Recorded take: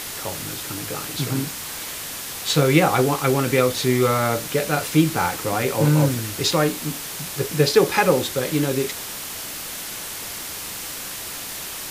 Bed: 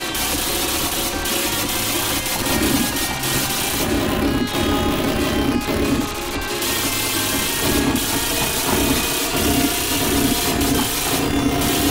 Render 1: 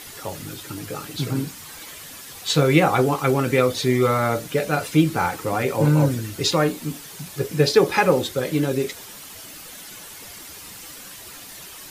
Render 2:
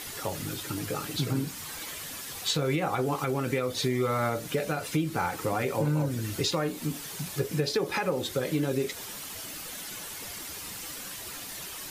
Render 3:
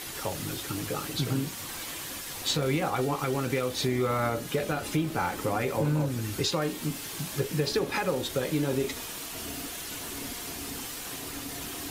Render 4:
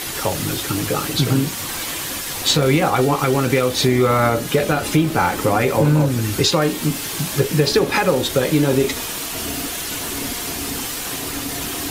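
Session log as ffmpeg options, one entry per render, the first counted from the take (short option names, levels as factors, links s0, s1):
-af "afftdn=nr=10:nf=-32"
-af "alimiter=limit=0.251:level=0:latency=1:release=290,acompressor=threshold=0.0398:ratio=2"
-filter_complex "[1:a]volume=0.0708[s0];[0:a][s0]amix=inputs=2:normalize=0"
-af "volume=3.76"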